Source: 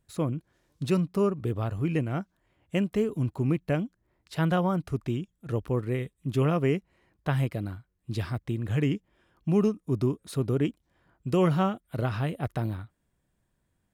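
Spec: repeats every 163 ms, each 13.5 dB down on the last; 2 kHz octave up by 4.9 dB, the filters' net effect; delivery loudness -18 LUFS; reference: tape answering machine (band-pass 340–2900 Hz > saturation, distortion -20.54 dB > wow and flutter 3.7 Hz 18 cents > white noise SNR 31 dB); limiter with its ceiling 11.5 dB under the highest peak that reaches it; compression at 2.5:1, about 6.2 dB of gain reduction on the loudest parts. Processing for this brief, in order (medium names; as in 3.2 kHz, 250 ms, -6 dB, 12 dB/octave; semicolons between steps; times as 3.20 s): peaking EQ 2 kHz +7.5 dB; compression 2.5:1, threshold -29 dBFS; peak limiter -27 dBFS; band-pass 340–2900 Hz; feedback delay 163 ms, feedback 21%, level -13.5 dB; saturation -29 dBFS; wow and flutter 3.7 Hz 18 cents; white noise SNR 31 dB; trim +25 dB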